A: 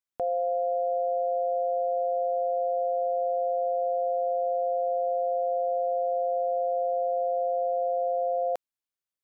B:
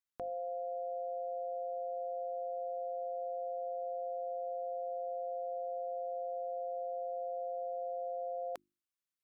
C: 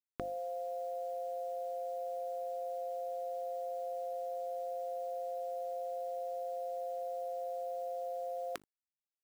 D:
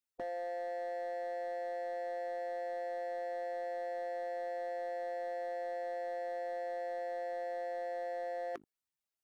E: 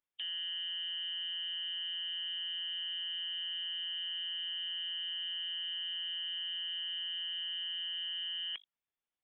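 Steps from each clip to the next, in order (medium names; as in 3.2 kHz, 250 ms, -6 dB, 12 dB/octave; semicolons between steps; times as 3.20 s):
high-order bell 610 Hz -8.5 dB 1.2 oct; hum notches 50/100/150/200/250/300/350 Hz; trim -3.5 dB
high-order bell 690 Hz -11 dB 1.2 oct; word length cut 12-bit, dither none; trim +10.5 dB
spectral contrast enhancement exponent 1.9; hard clipper -38.5 dBFS, distortion -13 dB; trim +2.5 dB
frequency inversion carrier 3.6 kHz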